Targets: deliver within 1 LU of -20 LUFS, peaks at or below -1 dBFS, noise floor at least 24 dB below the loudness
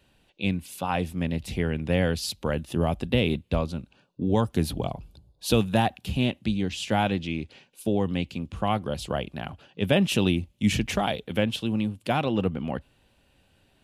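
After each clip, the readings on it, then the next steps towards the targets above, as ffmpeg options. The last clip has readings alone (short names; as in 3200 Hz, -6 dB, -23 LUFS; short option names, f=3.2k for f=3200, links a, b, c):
loudness -27.0 LUFS; peak -6.0 dBFS; loudness target -20.0 LUFS
-> -af "volume=7dB,alimiter=limit=-1dB:level=0:latency=1"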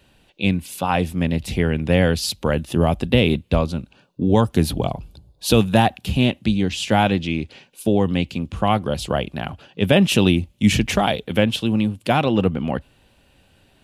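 loudness -20.0 LUFS; peak -1.0 dBFS; noise floor -58 dBFS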